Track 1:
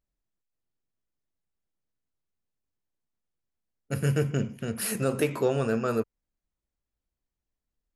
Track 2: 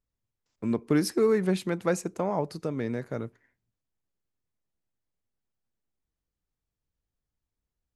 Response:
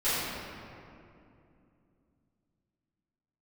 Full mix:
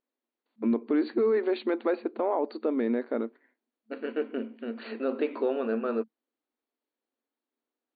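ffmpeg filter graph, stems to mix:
-filter_complex "[0:a]volume=-4.5dB[link_01];[1:a]volume=2dB[link_02];[link_01][link_02]amix=inputs=2:normalize=0,afftfilt=real='re*between(b*sr/4096,220,4600)':imag='im*between(b*sr/4096,220,4600)':win_size=4096:overlap=0.75,tiltshelf=frequency=1400:gain=4,alimiter=limit=-18dB:level=0:latency=1:release=24"

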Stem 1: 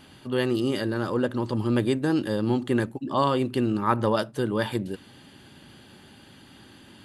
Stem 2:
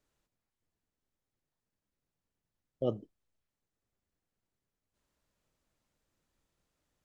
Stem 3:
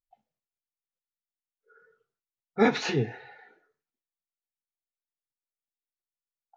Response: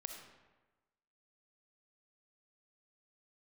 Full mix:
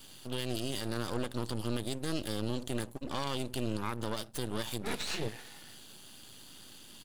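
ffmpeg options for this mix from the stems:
-filter_complex "[0:a]aexciter=amount=4:drive=5.5:freq=2900,volume=-4dB,asplit=2[link_01][link_02];[1:a]volume=-19.5dB[link_03];[2:a]equalizer=frequency=4000:width=0.88:gain=11,adelay=2250,volume=-5dB[link_04];[link_02]apad=whole_len=388652[link_05];[link_04][link_05]sidechaincompress=threshold=-31dB:ratio=8:attack=5.7:release=575[link_06];[link_01][link_03][link_06]amix=inputs=3:normalize=0,aeval=exprs='max(val(0),0)':channel_layout=same,alimiter=limit=-21.5dB:level=0:latency=1:release=158"

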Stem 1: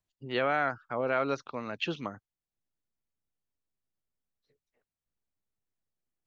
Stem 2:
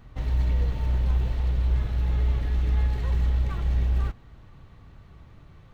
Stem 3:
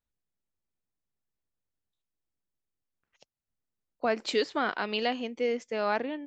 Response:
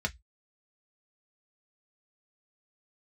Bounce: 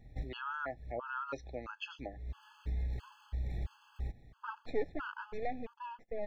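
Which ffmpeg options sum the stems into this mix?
-filter_complex "[0:a]equalizer=frequency=150:width_type=o:width=0.77:gain=-7,alimiter=limit=-22dB:level=0:latency=1:release=23,volume=-4.5dB,asplit=3[link_01][link_02][link_03];[link_02]volume=-11.5dB[link_04];[1:a]acompressor=threshold=-25dB:ratio=6,volume=-7dB[link_05];[2:a]aeval=exprs='max(val(0),0)':channel_layout=same,lowpass=1600,adelay=400,volume=-1dB[link_06];[link_03]apad=whole_len=252899[link_07];[link_05][link_07]sidechaincompress=threshold=-56dB:ratio=16:attack=22:release=220[link_08];[3:a]atrim=start_sample=2205[link_09];[link_04][link_09]afir=irnorm=-1:irlink=0[link_10];[link_01][link_08][link_06][link_10]amix=inputs=4:normalize=0,afftfilt=real='re*gt(sin(2*PI*1.5*pts/sr)*(1-2*mod(floor(b*sr/1024/860),2)),0)':imag='im*gt(sin(2*PI*1.5*pts/sr)*(1-2*mod(floor(b*sr/1024/860),2)),0)':win_size=1024:overlap=0.75"

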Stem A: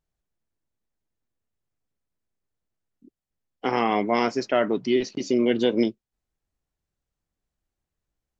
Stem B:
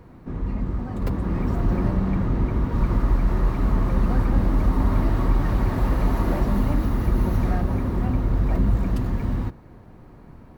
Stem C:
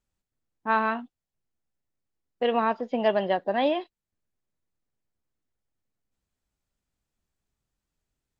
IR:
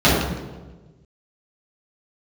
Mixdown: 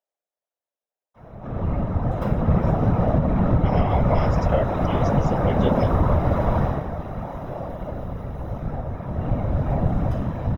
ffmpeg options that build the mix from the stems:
-filter_complex "[0:a]highpass=frequency=600:width_type=q:width=4.1,volume=-1dB[link_01];[1:a]lowshelf=frequency=430:width_type=q:width=3:gain=-8,adelay=1150,volume=4.5dB,afade=type=out:start_time=6.42:duration=0.42:silence=0.223872,afade=type=in:start_time=8.86:duration=0.56:silence=0.375837,asplit=2[link_02][link_03];[link_03]volume=-10.5dB[link_04];[3:a]atrim=start_sample=2205[link_05];[link_04][link_05]afir=irnorm=-1:irlink=0[link_06];[link_01][link_02][link_06]amix=inputs=3:normalize=0,afftfilt=real='hypot(re,im)*cos(2*PI*random(0))':imag='hypot(re,im)*sin(2*PI*random(1))':win_size=512:overlap=0.75,asuperstop=centerf=4400:order=12:qfactor=6.5,alimiter=limit=-8.5dB:level=0:latency=1:release=297"

